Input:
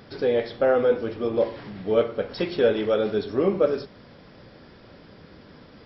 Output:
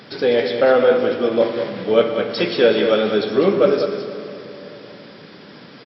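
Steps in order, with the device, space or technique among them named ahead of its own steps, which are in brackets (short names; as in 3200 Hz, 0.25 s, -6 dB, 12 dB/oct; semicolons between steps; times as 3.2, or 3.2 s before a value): PA in a hall (HPF 130 Hz 24 dB/oct; bell 3600 Hz +6 dB 2.4 oct; echo 0.2 s -8.5 dB; reverb RT60 3.1 s, pre-delay 44 ms, DRR 8 dB); gain +5 dB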